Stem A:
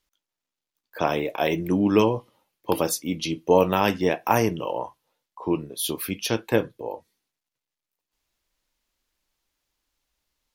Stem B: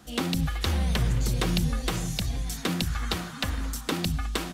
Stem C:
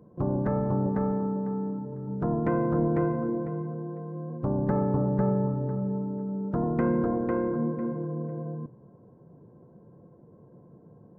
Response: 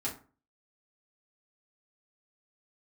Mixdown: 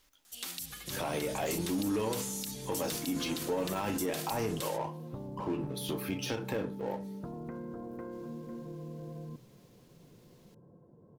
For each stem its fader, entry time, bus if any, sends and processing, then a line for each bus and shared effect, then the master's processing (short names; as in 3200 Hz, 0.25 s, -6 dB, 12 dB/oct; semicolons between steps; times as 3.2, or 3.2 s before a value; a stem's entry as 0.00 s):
-13.0 dB, 0.00 s, send -8.5 dB, de-esser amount 65%; power-law curve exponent 0.7
+1.0 dB, 0.25 s, no send, pre-emphasis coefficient 0.97
-5.5 dB, 0.70 s, no send, compressor, threshold -34 dBFS, peak gain reduction 12.5 dB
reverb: on, RT60 0.40 s, pre-delay 4 ms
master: limiter -24.5 dBFS, peak gain reduction 11 dB